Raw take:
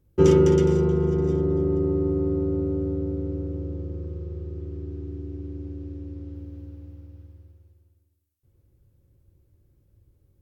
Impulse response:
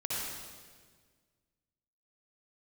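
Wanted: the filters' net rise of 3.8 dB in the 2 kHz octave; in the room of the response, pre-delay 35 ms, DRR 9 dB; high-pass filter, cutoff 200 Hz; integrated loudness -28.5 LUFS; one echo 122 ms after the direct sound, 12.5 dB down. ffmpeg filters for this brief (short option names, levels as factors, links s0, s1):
-filter_complex "[0:a]highpass=200,equalizer=f=2000:t=o:g=5,aecho=1:1:122:0.237,asplit=2[s0][s1];[1:a]atrim=start_sample=2205,adelay=35[s2];[s1][s2]afir=irnorm=-1:irlink=0,volume=0.2[s3];[s0][s3]amix=inputs=2:normalize=0,volume=0.631"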